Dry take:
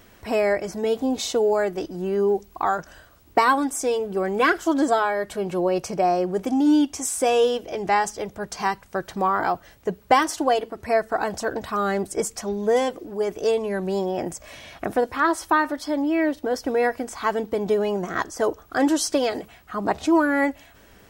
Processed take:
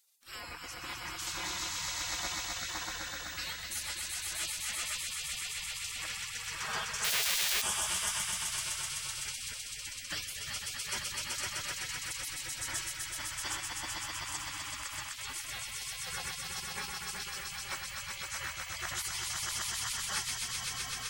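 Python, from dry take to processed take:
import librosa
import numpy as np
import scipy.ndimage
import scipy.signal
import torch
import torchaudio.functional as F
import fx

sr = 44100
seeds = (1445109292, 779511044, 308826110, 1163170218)

y = fx.echo_swell(x, sr, ms=127, loudest=5, wet_db=-4)
y = fx.schmitt(y, sr, flips_db=-17.0, at=(7.04, 7.62))
y = fx.spec_gate(y, sr, threshold_db=-25, keep='weak')
y = F.gain(torch.from_numpy(y), -4.5).numpy()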